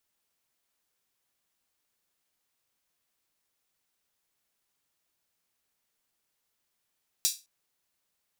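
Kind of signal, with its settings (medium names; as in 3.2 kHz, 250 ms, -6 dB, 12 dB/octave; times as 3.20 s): open hi-hat length 0.21 s, high-pass 4.7 kHz, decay 0.26 s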